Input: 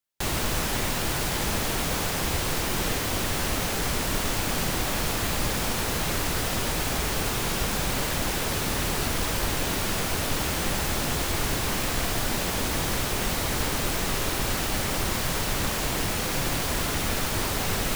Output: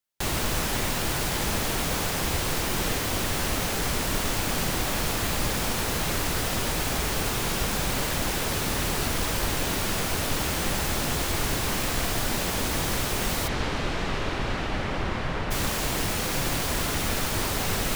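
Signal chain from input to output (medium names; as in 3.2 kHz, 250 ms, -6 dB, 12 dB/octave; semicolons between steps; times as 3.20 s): 13.47–15.50 s: low-pass 4.2 kHz -> 2.3 kHz 12 dB/octave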